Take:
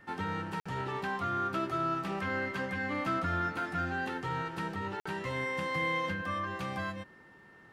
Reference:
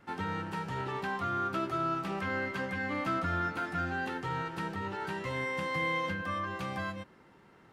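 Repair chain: notch 1800 Hz, Q 30; interpolate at 0.6/5, 55 ms

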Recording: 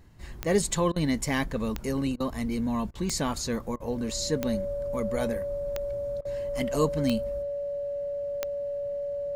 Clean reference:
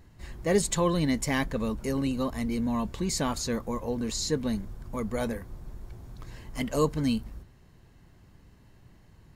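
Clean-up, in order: de-click; notch 570 Hz, Q 30; interpolate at 0.92/2.16/2.91/3.76/6.21, 40 ms

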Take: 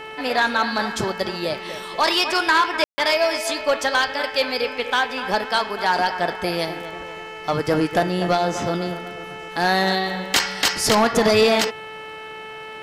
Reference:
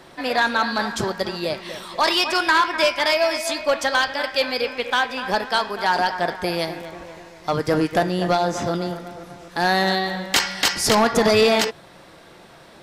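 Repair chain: de-click; de-hum 436.4 Hz, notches 7; room tone fill 2.84–2.98

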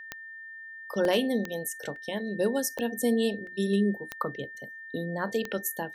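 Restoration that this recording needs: clip repair -16 dBFS; de-click; notch 1800 Hz, Q 30; interpolate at 1.05/1.96/3.47, 1.5 ms

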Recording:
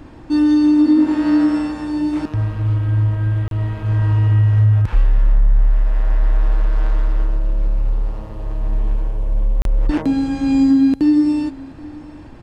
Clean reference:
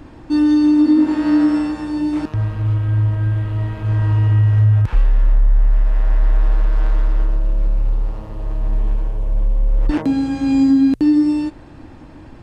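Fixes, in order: interpolate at 3.48/9.62, 32 ms; inverse comb 0.779 s -21.5 dB

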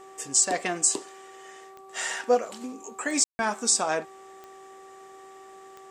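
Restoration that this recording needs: de-click; de-hum 385.7 Hz, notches 3; room tone fill 3.24–3.39

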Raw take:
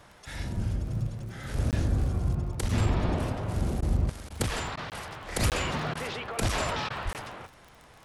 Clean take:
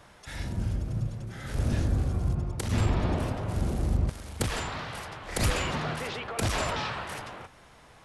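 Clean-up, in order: de-click; de-plosive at 0.55/1.99/2.61/3.05/3.88/6.4/7.04; interpolate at 1.71/4.9/5.5/7.13, 18 ms; interpolate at 3.81/4.29/4.76/5.94/6.89, 11 ms

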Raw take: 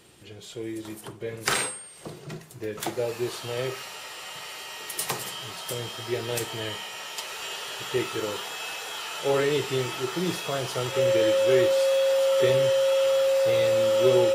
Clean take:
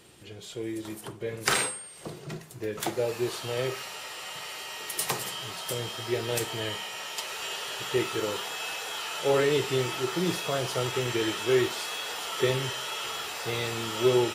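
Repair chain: clip repair -9 dBFS; notch 540 Hz, Q 30

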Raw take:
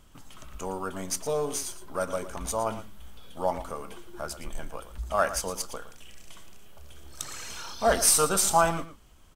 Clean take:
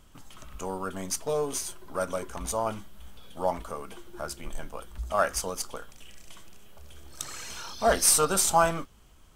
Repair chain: inverse comb 0.114 s -13 dB

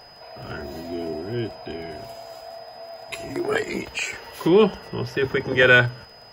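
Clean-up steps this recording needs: de-click; notch 5000 Hz, Q 30

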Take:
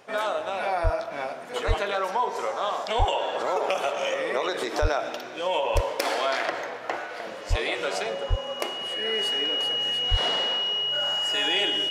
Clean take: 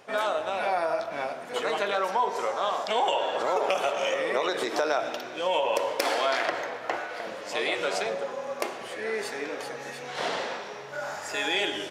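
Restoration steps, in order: notch 2900 Hz, Q 30; de-plosive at 0.83/1.67/2.98/4.81/5.74/7.49/8.29/10.1

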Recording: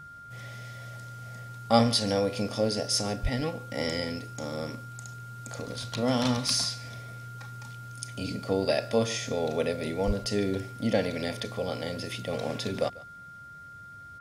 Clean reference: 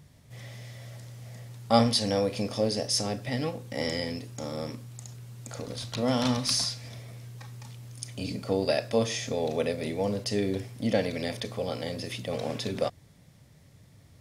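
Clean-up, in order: notch 1400 Hz, Q 30; 3.22–3.34 HPF 140 Hz 24 dB/oct; 10.06–10.18 HPF 140 Hz 24 dB/oct; inverse comb 0.144 s -21 dB

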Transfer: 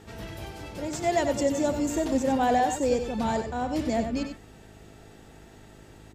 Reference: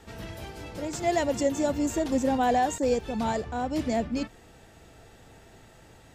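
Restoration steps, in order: de-hum 52 Hz, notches 8; inverse comb 94 ms -8 dB

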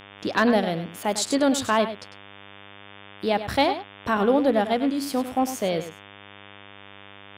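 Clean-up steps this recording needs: clip repair -10.5 dBFS; de-hum 100.2 Hz, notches 36; inverse comb 0.1 s -11.5 dB

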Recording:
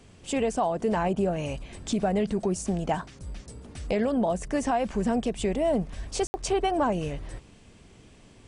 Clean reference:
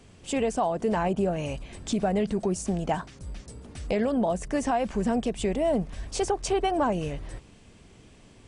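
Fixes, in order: room tone fill 6.27–6.34

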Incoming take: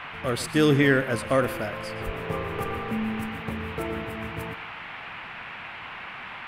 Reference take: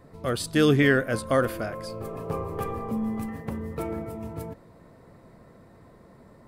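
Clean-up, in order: 2.05–2.17 HPF 140 Hz 24 dB/oct; noise print and reduce 13 dB; inverse comb 0.12 s -15.5 dB

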